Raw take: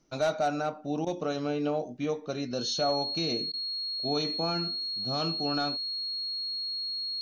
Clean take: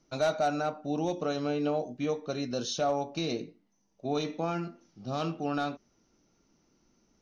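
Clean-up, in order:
notch filter 4,300 Hz, Q 30
repair the gap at 0:01.05/0:03.52, 14 ms

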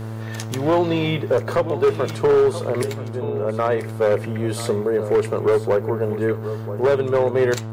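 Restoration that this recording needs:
clipped peaks rebuilt −12 dBFS
hum removal 110.9 Hz, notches 14
echo removal 981 ms −14 dB

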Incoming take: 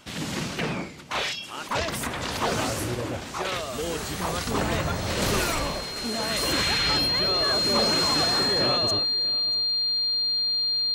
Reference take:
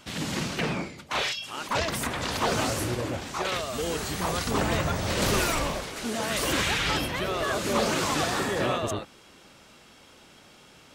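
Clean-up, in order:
notch filter 4,200 Hz, Q 30
echo removal 638 ms −20.5 dB

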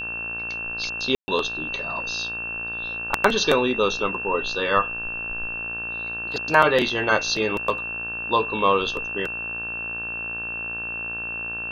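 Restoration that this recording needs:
hum removal 57.4 Hz, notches 30
notch filter 2,700 Hz, Q 30
ambience match 0:01.15–0:01.28

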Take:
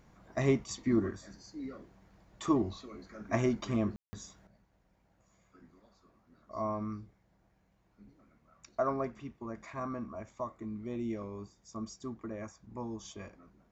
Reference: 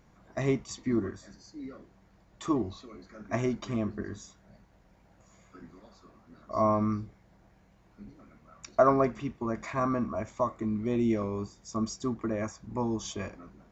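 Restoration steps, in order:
ambience match 0:03.96–0:04.13
level correction +9.5 dB, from 0:04.47

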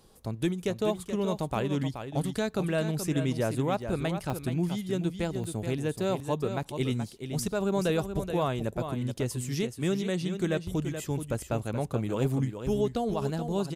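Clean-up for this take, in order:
repair the gap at 0:00.96/0:03.82/0:04.30/0:05.44/0:09.16, 1.1 ms
echo removal 427 ms −8.5 dB

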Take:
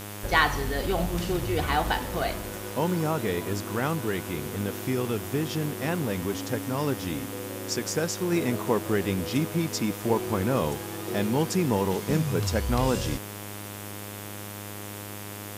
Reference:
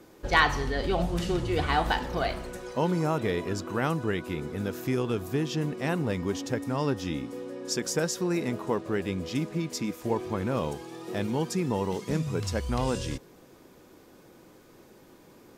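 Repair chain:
hum removal 102.4 Hz, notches 36
noise reduction from a noise print 15 dB
level 0 dB, from 0:08.32 −3.5 dB

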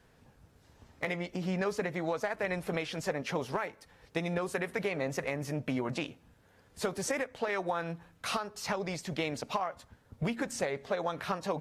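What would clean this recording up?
clipped peaks rebuilt −21 dBFS

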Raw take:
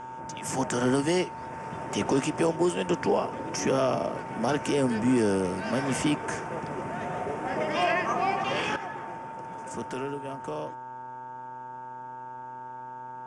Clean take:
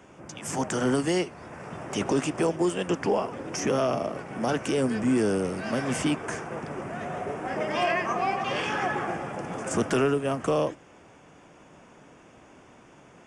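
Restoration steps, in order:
hum removal 125.3 Hz, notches 13
notch filter 900 Hz, Q 30
level correction +10.5 dB, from 0:08.76

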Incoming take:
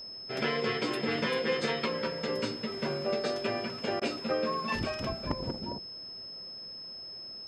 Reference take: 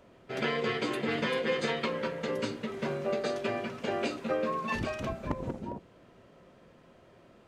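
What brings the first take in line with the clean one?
notch filter 5,200 Hz, Q 30
repair the gap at 0:04.00, 14 ms

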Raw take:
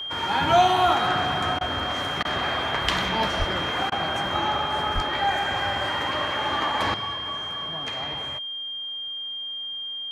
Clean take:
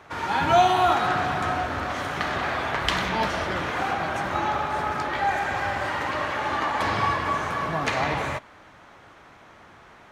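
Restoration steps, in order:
notch filter 3,200 Hz, Q 30
0:03.38–0:03.50: high-pass filter 140 Hz 24 dB per octave
0:04.94–0:05.06: high-pass filter 140 Hz 24 dB per octave
repair the gap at 0:01.59/0:02.23/0:03.90, 18 ms
0:06.94: level correction +10 dB

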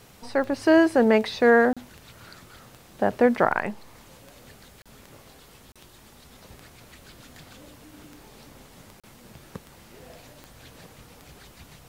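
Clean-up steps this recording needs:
click removal
repair the gap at 0:01.73/0:04.82/0:05.72/0:09.00, 36 ms

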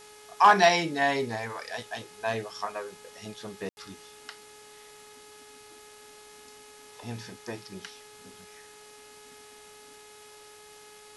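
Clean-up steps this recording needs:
hum removal 421.6 Hz, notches 16
ambience match 0:03.69–0:03.77
noise reduction from a noise print 26 dB

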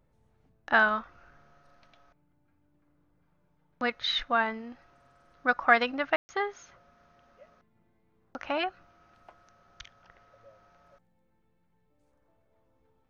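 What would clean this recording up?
ambience match 0:06.16–0:06.29

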